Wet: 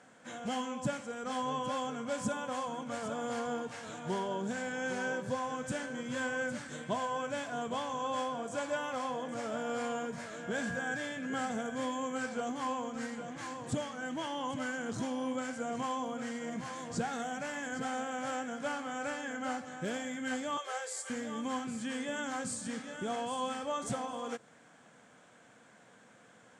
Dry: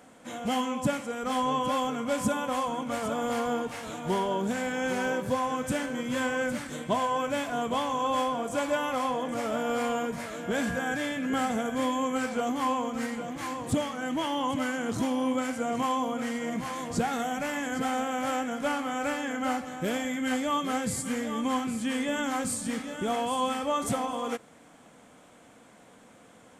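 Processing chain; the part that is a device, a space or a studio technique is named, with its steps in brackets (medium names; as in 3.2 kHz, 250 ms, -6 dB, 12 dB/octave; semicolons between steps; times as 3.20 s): treble shelf 6.7 kHz +5.5 dB; 20.57–21.10 s: steep high-pass 430 Hz 48 dB/octave; dynamic bell 1.8 kHz, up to -5 dB, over -43 dBFS, Q 0.85; car door speaker (cabinet simulation 100–8000 Hz, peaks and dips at 130 Hz +4 dB, 290 Hz -4 dB, 1.6 kHz +8 dB); trim -6 dB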